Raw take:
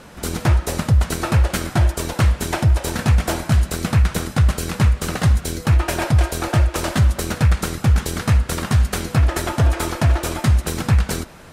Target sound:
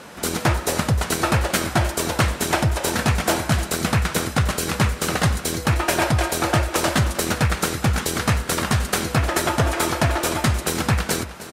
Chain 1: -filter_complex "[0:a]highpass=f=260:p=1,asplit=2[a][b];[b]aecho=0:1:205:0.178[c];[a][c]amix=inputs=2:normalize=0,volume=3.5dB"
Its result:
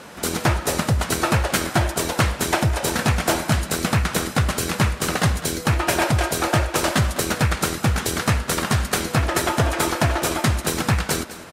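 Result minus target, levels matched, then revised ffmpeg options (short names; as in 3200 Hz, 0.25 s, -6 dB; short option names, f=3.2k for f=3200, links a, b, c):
echo 0.103 s early
-filter_complex "[0:a]highpass=f=260:p=1,asplit=2[a][b];[b]aecho=0:1:308:0.178[c];[a][c]amix=inputs=2:normalize=0,volume=3.5dB"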